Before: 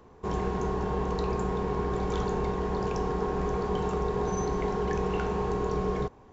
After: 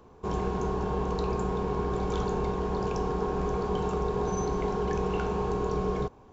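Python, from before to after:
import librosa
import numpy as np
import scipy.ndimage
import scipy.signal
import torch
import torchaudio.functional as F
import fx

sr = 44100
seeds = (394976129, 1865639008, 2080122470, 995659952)

y = fx.peak_eq(x, sr, hz=1900.0, db=-7.5, octaves=0.23)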